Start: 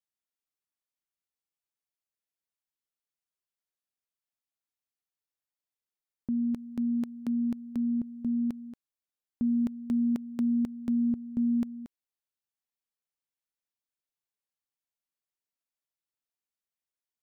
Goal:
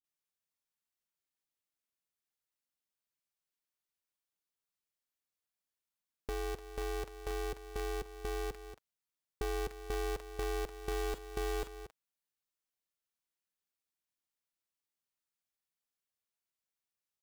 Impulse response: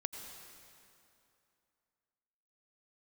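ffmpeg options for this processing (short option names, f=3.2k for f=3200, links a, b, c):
-filter_complex "[0:a]aecho=1:1:6.3:0.33,asplit=2[a][b];[b]acompressor=threshold=-41dB:ratio=6,volume=1.5dB[c];[a][c]amix=inputs=2:normalize=0,asettb=1/sr,asplit=3[d][e][f];[d]atrim=end=10.684[g];[e]atrim=start=10.68:end=11.63,asetpts=PTS-STARTPTS,afade=t=in:d=0.004:c=qsin,afade=t=out:st=0.946:d=0.004:c=qsin,acrusher=bits=5:mode=log:mix=0:aa=0.000001[h];[f]atrim=start=11.626[i];[g][h]acrossfade=d=0.004:c1=hsin:c2=qsin[j];[j][i]acrossfade=d=0.004:c1=qsin:c2=hsin,acrossover=split=540[k][l];[l]adelay=40[m];[k][m]amix=inputs=2:normalize=0,aeval=exprs='val(0)*sgn(sin(2*PI*190*n/s))':c=same,volume=-7.5dB"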